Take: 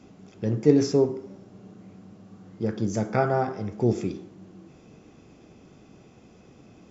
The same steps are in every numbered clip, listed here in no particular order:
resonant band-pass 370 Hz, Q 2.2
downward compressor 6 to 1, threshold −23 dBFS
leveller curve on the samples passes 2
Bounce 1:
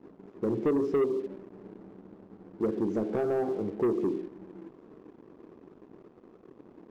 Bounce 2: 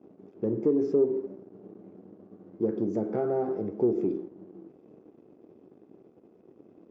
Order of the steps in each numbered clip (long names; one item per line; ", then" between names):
downward compressor, then resonant band-pass, then leveller curve on the samples
downward compressor, then leveller curve on the samples, then resonant band-pass